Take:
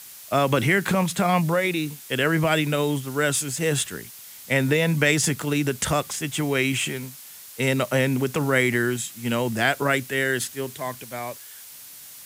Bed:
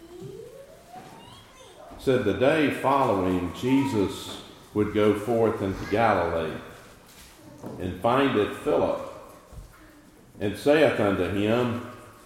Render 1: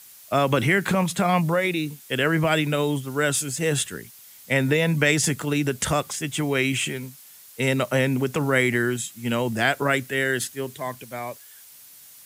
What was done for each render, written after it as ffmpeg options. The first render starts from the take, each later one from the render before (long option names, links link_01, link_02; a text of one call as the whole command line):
ffmpeg -i in.wav -af "afftdn=noise_reduction=6:noise_floor=-43" out.wav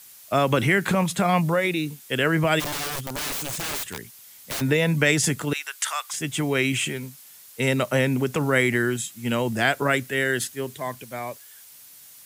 ffmpeg -i in.wav -filter_complex "[0:a]asplit=3[link_01][link_02][link_03];[link_01]afade=type=out:start_time=2.59:duration=0.02[link_04];[link_02]aeval=exprs='(mod(16.8*val(0)+1,2)-1)/16.8':channel_layout=same,afade=type=in:start_time=2.59:duration=0.02,afade=type=out:start_time=4.6:duration=0.02[link_05];[link_03]afade=type=in:start_time=4.6:duration=0.02[link_06];[link_04][link_05][link_06]amix=inputs=3:normalize=0,asettb=1/sr,asplit=3[link_07][link_08][link_09];[link_07]atrim=end=5.534[link_10];[link_08]atrim=start=5.53:end=6.13,asetpts=PTS-STARTPTS,afade=type=in:duration=0.004:curve=qsin,afade=type=out:start_time=0.596:duration=0.004:curve=qsin,highpass=frequency=980:width=0.5412,highpass=frequency=980:width=1.3066[link_11];[link_09]atrim=start=6.126[link_12];[link_10][link_11]acrossfade=duration=0.004:curve1=hsin:curve2=qsin[link_13];[link_13][link_12]acrossfade=duration=0.004:curve1=qsin:curve2=hsin" out.wav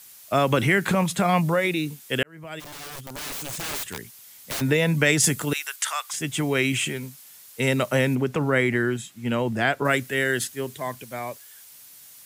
ffmpeg -i in.wav -filter_complex "[0:a]asettb=1/sr,asplit=3[link_01][link_02][link_03];[link_01]atrim=end=5.204[link_04];[link_02]atrim=start=5.2:end=5.76,asetpts=PTS-STARTPTS,afade=type=in:duration=0.004:curve=qsin,afade=type=out:start_time=0.556:duration=0.004:curve=qsin,highshelf=frequency=7100:gain=7.5[link_05];[link_03]atrim=start=5.756[link_06];[link_04][link_05]acrossfade=duration=0.004:curve1=hsin:curve2=qsin[link_07];[link_07][link_06]acrossfade=duration=0.004:curve1=qsin:curve2=hsin,asettb=1/sr,asplit=3[link_08][link_09][link_10];[link_08]atrim=end=8.154[link_11];[link_09]atrim=start=8.15:end=9.85,asetpts=PTS-STARTPTS,afade=type=in:duration=0.004:curve=qsin,afade=type=out:start_time=1.696:duration=0.004:curve=qsin,highshelf=frequency=4400:gain=-11.5[link_12];[link_10]atrim=start=9.846[link_13];[link_11][link_12]acrossfade=duration=0.004:curve1=hsin:curve2=qsin[link_14];[link_14][link_13]acrossfade=duration=0.004:curve1=qsin:curve2=hsin,asplit=2[link_15][link_16];[link_15]atrim=end=2.23,asetpts=PTS-STARTPTS,afade=type=out:start_time=2.226:duration=0.004:curve=hsin[link_17];[link_16]atrim=start=2.23,asetpts=PTS-STARTPTS,afade=type=in:duration=1.7[link_18];[link_17][link_18]concat=n=2:v=0:a=1" out.wav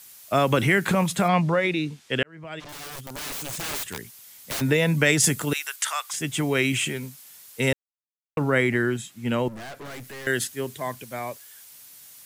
ffmpeg -i in.wav -filter_complex "[0:a]asettb=1/sr,asplit=3[link_01][link_02][link_03];[link_01]atrim=end=1.284[link_04];[link_02]atrim=start=1.28:end=2.69,asetpts=PTS-STARTPTS,afade=type=in:duration=0.004:curve=qsin,afade=type=out:start_time=1.406:duration=0.004:curve=qsin,lowpass=5200[link_05];[link_03]atrim=start=2.686[link_06];[link_04][link_05]acrossfade=duration=0.004:curve1=hsin:curve2=qsin[link_07];[link_07][link_06]acrossfade=duration=0.004:curve1=qsin:curve2=hsin,asettb=1/sr,asplit=3[link_08][link_09][link_10];[link_08]atrim=end=9.484[link_11];[link_09]atrim=start=9.48:end=10.27,asetpts=PTS-STARTPTS,afade=type=in:duration=0.004:curve=qsin,afade=type=out:start_time=0.786:duration=0.004:curve=qsin,aeval=exprs='(tanh(70.8*val(0)+0.35)-tanh(0.35))/70.8':channel_layout=same[link_12];[link_10]atrim=start=10.266[link_13];[link_11][link_12]acrossfade=duration=0.004:curve1=hsin:curve2=qsin[link_14];[link_14][link_13]acrossfade=duration=0.004:curve1=qsin:curve2=hsin,asplit=3[link_15][link_16][link_17];[link_15]atrim=end=7.73,asetpts=PTS-STARTPTS,afade=type=out:start_time=7.726:duration=0.004:curve=hsin[link_18];[link_16]atrim=start=7.73:end=8.37,asetpts=PTS-STARTPTS,volume=0[link_19];[link_17]atrim=start=8.37,asetpts=PTS-STARTPTS,afade=type=in:duration=0.004:curve=hsin[link_20];[link_18][link_19][link_20]concat=n=3:v=0:a=1" out.wav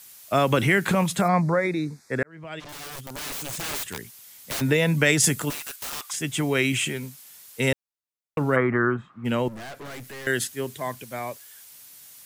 ffmpeg -i in.wav -filter_complex "[0:a]asettb=1/sr,asplit=3[link_01][link_02][link_03];[link_01]atrim=end=1.214[link_04];[link_02]atrim=start=1.21:end=2.31,asetpts=PTS-STARTPTS,afade=type=in:duration=0.004:curve=qsin,afade=type=out:start_time=1.096:duration=0.004:curve=qsin,asuperstop=centerf=3000:order=4:qfactor=1.5[link_05];[link_03]atrim=start=2.306[link_06];[link_04][link_05]acrossfade=duration=0.004:curve1=hsin:curve2=qsin[link_07];[link_07][link_06]acrossfade=duration=0.004:curve1=qsin:curve2=hsin,asettb=1/sr,asplit=3[link_08][link_09][link_10];[link_08]atrim=end=5.504[link_11];[link_09]atrim=start=5.5:end=6.07,asetpts=PTS-STARTPTS,afade=type=in:duration=0.004:curve=qsin,afade=type=out:start_time=0.566:duration=0.004:curve=qsin,aeval=exprs='(mod(23.7*val(0)+1,2)-1)/23.7':channel_layout=same[link_12];[link_10]atrim=start=6.066[link_13];[link_11][link_12]acrossfade=duration=0.004:curve1=hsin:curve2=qsin[link_14];[link_14][link_13]acrossfade=duration=0.004:curve1=qsin:curve2=hsin,asplit=3[link_15][link_16][link_17];[link_15]afade=type=out:start_time=8.55:duration=0.02[link_18];[link_16]lowpass=frequency=1200:width_type=q:width=7.3,afade=type=in:start_time=8.55:duration=0.02,afade=type=out:start_time=9.24:duration=0.02[link_19];[link_17]afade=type=in:start_time=9.24:duration=0.02[link_20];[link_18][link_19][link_20]amix=inputs=3:normalize=0" out.wav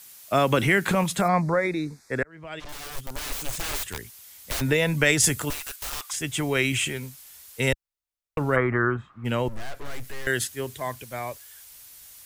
ffmpeg -i in.wav -af "asubboost=boost=8.5:cutoff=60" out.wav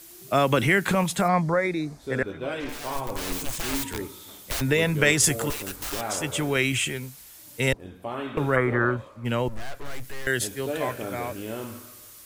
ffmpeg -i in.wav -i bed.wav -filter_complex "[1:a]volume=-11dB[link_01];[0:a][link_01]amix=inputs=2:normalize=0" out.wav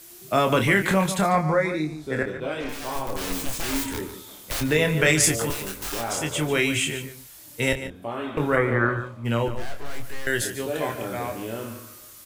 ffmpeg -i in.wav -filter_complex "[0:a]asplit=2[link_01][link_02];[link_02]adelay=26,volume=-6dB[link_03];[link_01][link_03]amix=inputs=2:normalize=0,asplit=2[link_04][link_05];[link_05]adelay=145.8,volume=-11dB,highshelf=frequency=4000:gain=-3.28[link_06];[link_04][link_06]amix=inputs=2:normalize=0" out.wav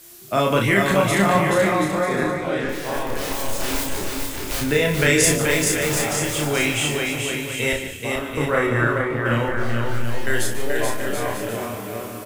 ffmpeg -i in.wav -filter_complex "[0:a]asplit=2[link_01][link_02];[link_02]adelay=35,volume=-3.5dB[link_03];[link_01][link_03]amix=inputs=2:normalize=0,asplit=2[link_04][link_05];[link_05]aecho=0:1:430|731|941.7|1089|1192:0.631|0.398|0.251|0.158|0.1[link_06];[link_04][link_06]amix=inputs=2:normalize=0" out.wav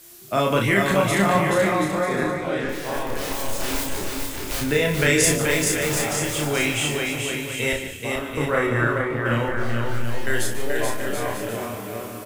ffmpeg -i in.wav -af "volume=-1.5dB" out.wav